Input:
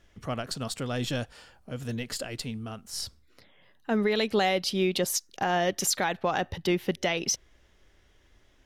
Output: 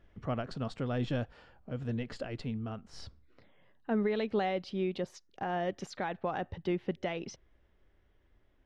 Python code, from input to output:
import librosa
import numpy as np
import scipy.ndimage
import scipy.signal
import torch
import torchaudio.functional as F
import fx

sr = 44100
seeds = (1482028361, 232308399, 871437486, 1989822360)

y = fx.rider(x, sr, range_db=4, speed_s=2.0)
y = fx.spacing_loss(y, sr, db_at_10k=31)
y = F.gain(torch.from_numpy(y), -3.5).numpy()